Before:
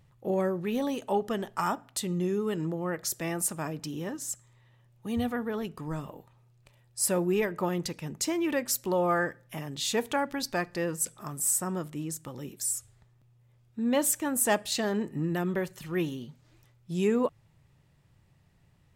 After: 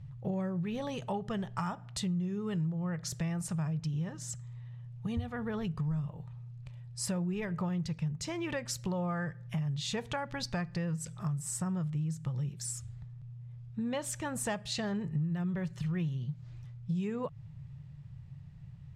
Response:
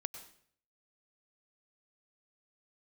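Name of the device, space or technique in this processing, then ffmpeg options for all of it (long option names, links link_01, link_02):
jukebox: -af "lowpass=6000,lowshelf=frequency=200:width_type=q:width=3:gain=11,acompressor=threshold=-32dB:ratio=5"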